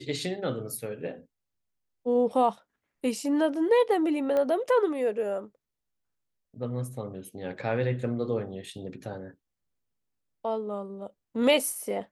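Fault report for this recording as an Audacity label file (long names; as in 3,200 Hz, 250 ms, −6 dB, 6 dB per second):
4.370000	4.370000	click −18 dBFS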